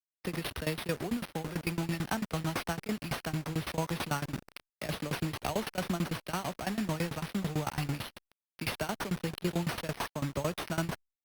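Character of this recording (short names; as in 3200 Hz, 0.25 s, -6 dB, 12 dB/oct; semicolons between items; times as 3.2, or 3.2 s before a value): a quantiser's noise floor 6-bit, dither none; tremolo saw down 9 Hz, depth 95%; aliases and images of a low sample rate 7200 Hz, jitter 0%; Opus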